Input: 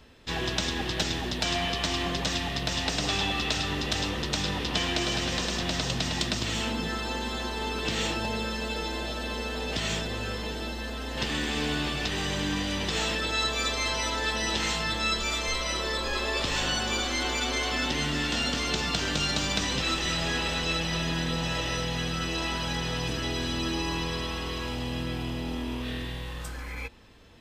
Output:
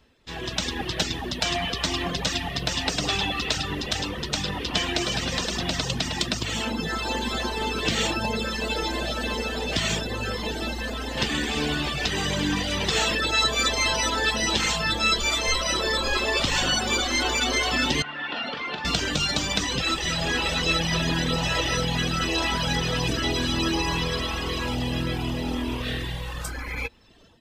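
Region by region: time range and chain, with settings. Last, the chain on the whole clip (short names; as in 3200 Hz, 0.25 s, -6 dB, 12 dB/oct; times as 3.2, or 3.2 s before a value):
18.02–18.85 HPF 650 Hz 6 dB/oct + air absorption 420 m + doubler 42 ms -6 dB
whole clip: reverb removal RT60 1.2 s; AGC gain up to 15 dB; gain -6.5 dB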